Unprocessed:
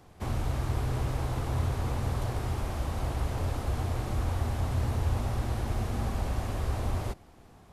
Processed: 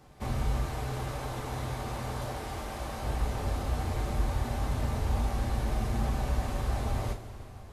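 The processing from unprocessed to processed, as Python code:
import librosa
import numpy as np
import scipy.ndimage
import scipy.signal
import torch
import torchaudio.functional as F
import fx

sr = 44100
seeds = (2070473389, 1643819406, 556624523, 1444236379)

y = fx.low_shelf(x, sr, hz=180.0, db=-10.5, at=(0.64, 3.05))
y = fx.rev_double_slope(y, sr, seeds[0], early_s=0.25, late_s=3.9, knee_db=-18, drr_db=0.5)
y = y * librosa.db_to_amplitude(-2.0)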